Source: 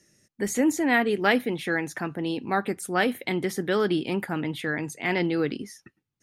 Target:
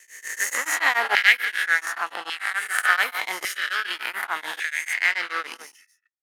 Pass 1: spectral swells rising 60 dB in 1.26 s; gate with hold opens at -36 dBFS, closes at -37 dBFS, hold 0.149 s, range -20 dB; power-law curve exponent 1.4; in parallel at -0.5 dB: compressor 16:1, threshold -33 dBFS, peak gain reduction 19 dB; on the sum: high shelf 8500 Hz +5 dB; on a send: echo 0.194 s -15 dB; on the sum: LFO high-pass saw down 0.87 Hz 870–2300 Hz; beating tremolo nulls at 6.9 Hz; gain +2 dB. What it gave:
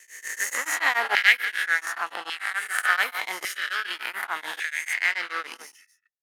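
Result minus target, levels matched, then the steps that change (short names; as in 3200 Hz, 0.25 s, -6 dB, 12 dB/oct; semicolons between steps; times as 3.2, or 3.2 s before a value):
compressor: peak gain reduction +8.5 dB
change: compressor 16:1, threshold -24 dBFS, peak gain reduction 10.5 dB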